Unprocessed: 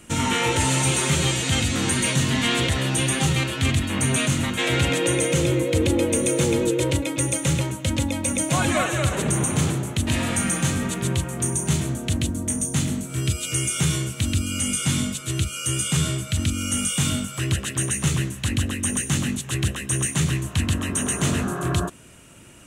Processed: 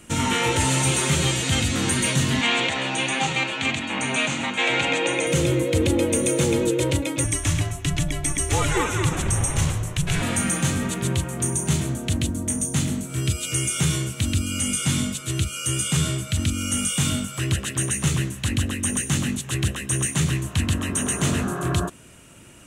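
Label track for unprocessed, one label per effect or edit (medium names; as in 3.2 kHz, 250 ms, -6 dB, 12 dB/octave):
2.410000	5.270000	cabinet simulation 250–7400 Hz, peaks and dips at 370 Hz -5 dB, 840 Hz +8 dB, 2.4 kHz +6 dB, 5.2 kHz -6 dB
7.240000	10.220000	frequency shift -240 Hz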